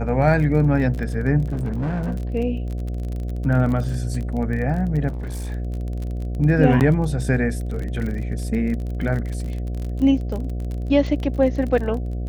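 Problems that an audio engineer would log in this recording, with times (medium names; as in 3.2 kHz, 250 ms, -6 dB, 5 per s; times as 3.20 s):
buzz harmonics 12 -26 dBFS
crackle 33 per s -28 dBFS
1.51–2.15 s: clipped -20.5 dBFS
5.08–5.52 s: clipped -25.5 dBFS
6.80–6.81 s: dropout 8.7 ms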